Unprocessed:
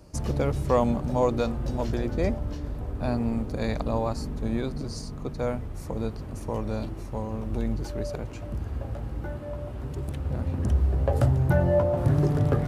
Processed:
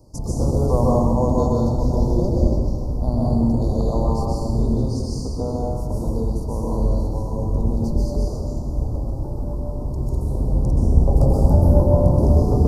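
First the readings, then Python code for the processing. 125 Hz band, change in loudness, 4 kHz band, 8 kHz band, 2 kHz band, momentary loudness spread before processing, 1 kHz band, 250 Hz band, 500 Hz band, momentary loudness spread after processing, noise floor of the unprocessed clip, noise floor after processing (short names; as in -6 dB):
+7.5 dB, +7.0 dB, +1.0 dB, +5.5 dB, under -20 dB, 12 LU, +4.5 dB, +7.5 dB, +4.5 dB, 11 LU, -37 dBFS, -27 dBFS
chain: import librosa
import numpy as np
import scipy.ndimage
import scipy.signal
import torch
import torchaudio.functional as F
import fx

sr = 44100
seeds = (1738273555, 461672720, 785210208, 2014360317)

y = fx.octave_divider(x, sr, octaves=1, level_db=1.0)
y = scipy.signal.sosfilt(scipy.signal.ellip(3, 1.0, 60, [990.0, 4800.0], 'bandstop', fs=sr, output='sos'), y)
y = fx.rev_plate(y, sr, seeds[0], rt60_s=1.5, hf_ratio=0.95, predelay_ms=115, drr_db=-5.0)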